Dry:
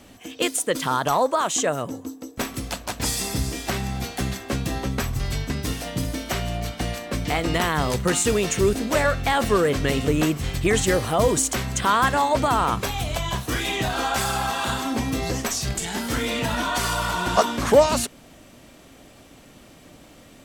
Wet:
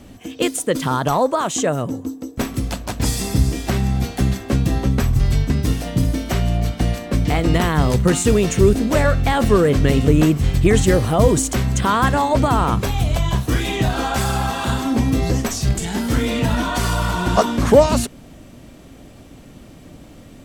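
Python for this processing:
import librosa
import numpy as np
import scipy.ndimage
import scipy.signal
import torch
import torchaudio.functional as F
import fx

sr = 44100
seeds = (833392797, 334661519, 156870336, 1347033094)

y = fx.low_shelf(x, sr, hz=380.0, db=11.0)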